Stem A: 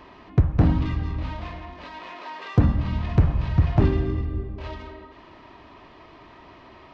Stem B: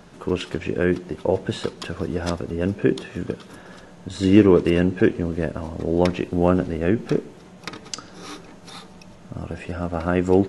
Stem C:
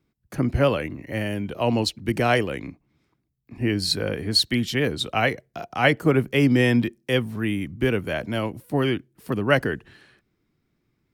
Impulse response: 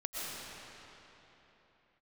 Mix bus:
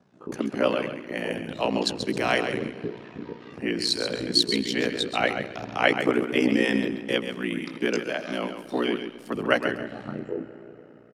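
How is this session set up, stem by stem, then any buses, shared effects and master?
−11.5 dB, 1.00 s, no send, no echo send, downward compressor, threshold −25 dBFS, peak gain reduction 12.5 dB
−1.0 dB, 0.00 s, send −11.5 dB, no echo send, downward compressor 12 to 1, threshold −26 dBFS, peak gain reduction 19 dB; chorus effect 0.62 Hz, delay 19 ms, depth 5.1 ms; every bin expanded away from the loudest bin 1.5 to 1
+1.5 dB, 0.00 s, send −20 dB, echo send −8 dB, Butterworth high-pass 200 Hz 36 dB per octave; amplitude modulation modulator 120 Hz, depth 30%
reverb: on, RT60 3.6 s, pre-delay 80 ms
echo: repeating echo 134 ms, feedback 23%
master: high-shelf EQ 4,600 Hz +6.5 dB; ring modulation 30 Hz; band-pass filter 140–7,400 Hz

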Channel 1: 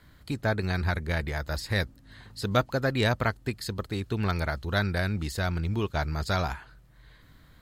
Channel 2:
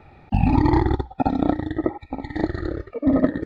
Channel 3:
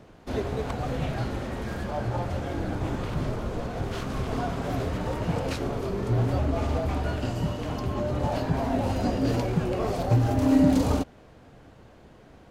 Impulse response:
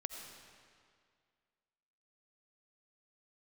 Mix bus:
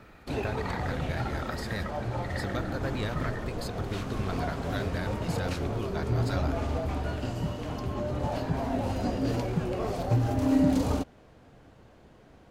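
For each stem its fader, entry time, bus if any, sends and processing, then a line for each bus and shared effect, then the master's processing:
−5.0 dB, 0.00 s, bus A, no send, pitch vibrato 3.5 Hz 34 cents
−6.5 dB, 0.00 s, bus A, no send, high-pass with resonance 1,400 Hz, resonance Q 2.7
−3.5 dB, 0.00 s, no bus, no send, no processing
bus A: 0.0 dB, downward compressor, threshold −31 dBFS, peak gain reduction 8.5 dB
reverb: not used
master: no processing

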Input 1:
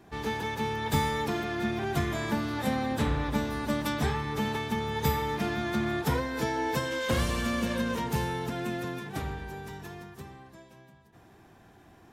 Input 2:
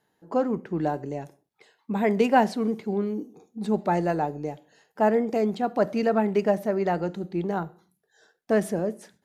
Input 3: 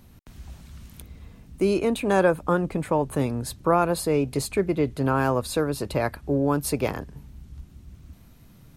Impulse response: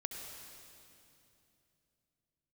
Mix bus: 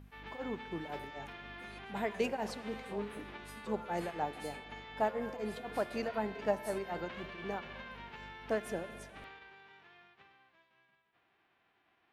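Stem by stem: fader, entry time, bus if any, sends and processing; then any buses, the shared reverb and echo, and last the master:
−13.0 dB, 0.00 s, bus A, no send, spectral envelope flattened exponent 0.3; low-pass filter 2,900 Hz 24 dB per octave
−8.0 dB, 0.00 s, no bus, send −9 dB, mains hum 50 Hz, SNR 10 dB; tremolo along a rectified sine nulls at 4 Hz
−6.0 dB, 0.00 s, bus A, no send, step-sequenced resonator 2.8 Hz 89–1,000 Hz
bus A: 0.0 dB, downward compressor, threshold −42 dBFS, peak gain reduction 15 dB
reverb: on, RT60 2.9 s, pre-delay 62 ms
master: low-shelf EQ 310 Hz −11.5 dB

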